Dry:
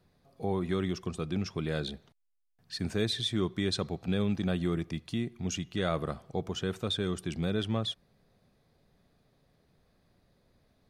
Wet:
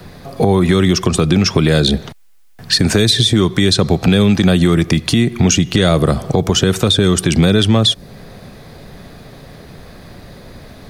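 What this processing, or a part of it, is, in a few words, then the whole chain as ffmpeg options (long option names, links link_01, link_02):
mastering chain: -filter_complex "[0:a]equalizer=frequency=1800:width_type=o:width=0.77:gain=2,acrossover=split=180|650|4000[link_01][link_02][link_03][link_04];[link_01]acompressor=threshold=-42dB:ratio=4[link_05];[link_02]acompressor=threshold=-41dB:ratio=4[link_06];[link_03]acompressor=threshold=-50dB:ratio=4[link_07];[link_04]acompressor=threshold=-42dB:ratio=4[link_08];[link_05][link_06][link_07][link_08]amix=inputs=4:normalize=0,acompressor=threshold=-42dB:ratio=2,asoftclip=type=tanh:threshold=-24.5dB,alimiter=level_in=32.5dB:limit=-1dB:release=50:level=0:latency=1,volume=-1dB"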